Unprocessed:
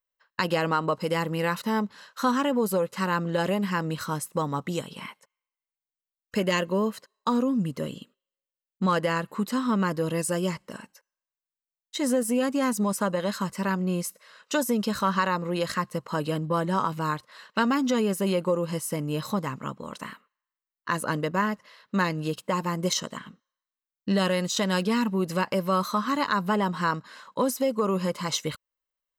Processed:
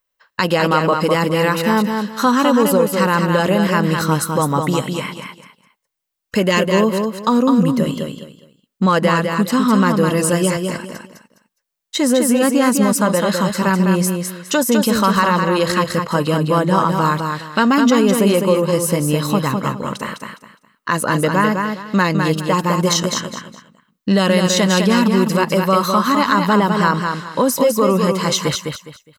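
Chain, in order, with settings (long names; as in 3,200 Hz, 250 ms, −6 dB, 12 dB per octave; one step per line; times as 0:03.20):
in parallel at +2 dB: brickwall limiter −21 dBFS, peak gain reduction 9 dB
on the sum: repeating echo 206 ms, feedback 26%, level −5 dB
level +4.5 dB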